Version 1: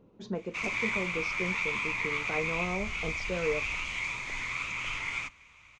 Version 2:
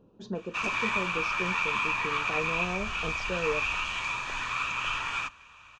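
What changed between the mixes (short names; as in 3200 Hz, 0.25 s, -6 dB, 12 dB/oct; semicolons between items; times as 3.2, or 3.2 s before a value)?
background: add bell 1400 Hz +10 dB 2.3 oct; master: add Butterworth band-stop 2100 Hz, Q 3.7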